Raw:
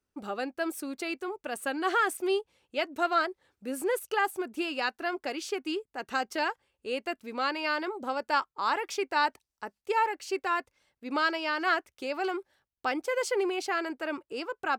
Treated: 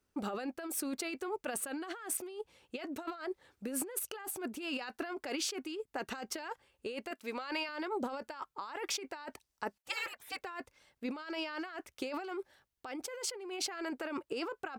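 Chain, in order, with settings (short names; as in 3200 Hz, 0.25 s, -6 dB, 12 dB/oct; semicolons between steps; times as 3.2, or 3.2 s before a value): 7.11–7.69 HPF 520 Hz 6 dB/oct; 9.78–10.42 spectral gate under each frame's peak -20 dB weak; negative-ratio compressor -38 dBFS, ratio -1; gain -2 dB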